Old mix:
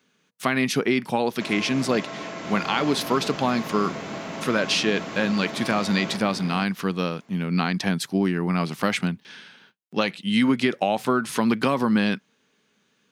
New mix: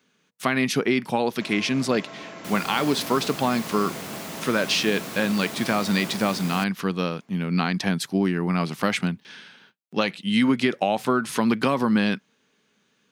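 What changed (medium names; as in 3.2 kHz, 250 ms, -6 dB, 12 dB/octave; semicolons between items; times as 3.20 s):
first sound -5.5 dB; second sound: remove distance through air 240 m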